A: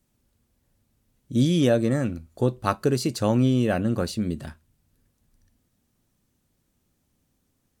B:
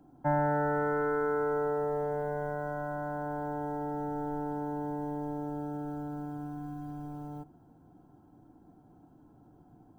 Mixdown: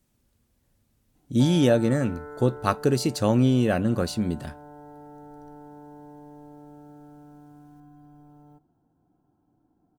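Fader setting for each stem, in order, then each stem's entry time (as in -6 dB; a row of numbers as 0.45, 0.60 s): +0.5, -10.5 dB; 0.00, 1.15 s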